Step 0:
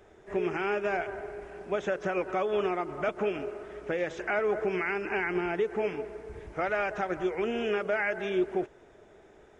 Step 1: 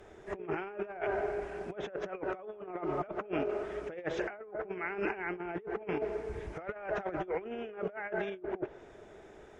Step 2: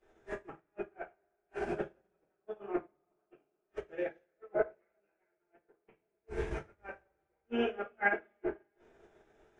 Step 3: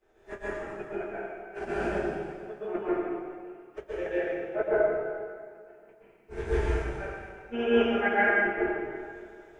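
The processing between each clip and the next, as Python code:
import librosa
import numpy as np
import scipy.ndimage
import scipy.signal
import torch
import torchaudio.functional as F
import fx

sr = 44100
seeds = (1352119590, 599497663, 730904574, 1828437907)

y1 = fx.env_lowpass_down(x, sr, base_hz=1600.0, full_db=-24.0)
y1 = fx.dynamic_eq(y1, sr, hz=610.0, q=0.84, threshold_db=-42.0, ratio=4.0, max_db=4)
y1 = fx.over_compress(y1, sr, threshold_db=-33.0, ratio=-0.5)
y1 = y1 * 10.0 ** (-3.0 / 20.0)
y2 = fx.gate_flip(y1, sr, shuts_db=-29.0, range_db=-29)
y2 = fx.rev_double_slope(y2, sr, seeds[0], early_s=0.45, late_s=4.2, knee_db=-21, drr_db=-8.5)
y2 = fx.upward_expand(y2, sr, threshold_db=-50.0, expansion=2.5)
y2 = y2 * 10.0 ** (4.5 / 20.0)
y3 = fx.rev_plate(y2, sr, seeds[1], rt60_s=1.9, hf_ratio=0.95, predelay_ms=110, drr_db=-9.0)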